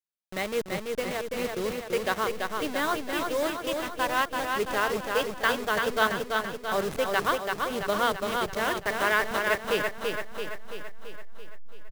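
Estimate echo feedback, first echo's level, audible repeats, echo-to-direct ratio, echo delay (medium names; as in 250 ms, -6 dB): 59%, -4.0 dB, 7, -2.0 dB, 335 ms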